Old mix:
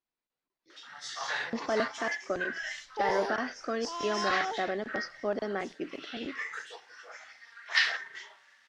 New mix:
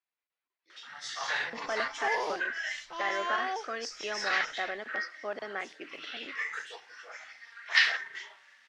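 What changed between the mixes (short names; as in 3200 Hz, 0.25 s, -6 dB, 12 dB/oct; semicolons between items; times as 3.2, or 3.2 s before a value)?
speech: add band-pass 1900 Hz, Q 0.54; second sound: entry -0.95 s; master: add bell 2400 Hz +4 dB 0.92 oct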